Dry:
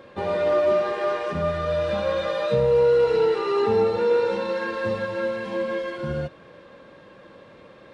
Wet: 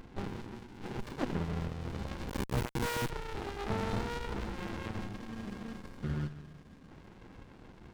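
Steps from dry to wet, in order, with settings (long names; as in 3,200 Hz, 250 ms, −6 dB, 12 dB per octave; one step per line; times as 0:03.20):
on a send: delay with a high-pass on its return 809 ms, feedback 50%, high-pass 1,400 Hz, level −18 dB
0:01.00–0:01.25: on the sum: sound drawn into the spectrogram fall 220–3,900 Hz −17 dBFS
soft clipping −22 dBFS, distortion −10 dB
0:03.70–0:04.19: bass and treble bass +9 dB, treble +14 dB
0:05.03–0:06.90: gain on a spectral selection 320–1,200 Hz −20 dB
comb and all-pass reverb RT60 2.2 s, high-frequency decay 0.5×, pre-delay 25 ms, DRR 14.5 dB
0:02.29–0:03.10: log-companded quantiser 4 bits
windowed peak hold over 65 samples
level −1 dB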